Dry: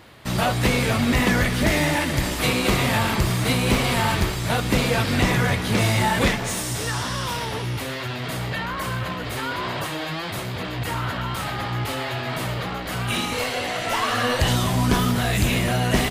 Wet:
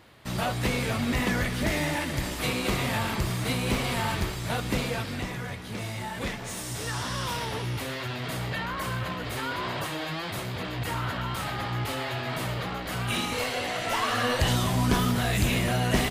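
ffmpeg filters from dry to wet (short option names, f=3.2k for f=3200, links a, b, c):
-af "volume=3.5dB,afade=t=out:st=4.71:d=0.58:silence=0.421697,afade=t=in:st=6.13:d=1.09:silence=0.298538"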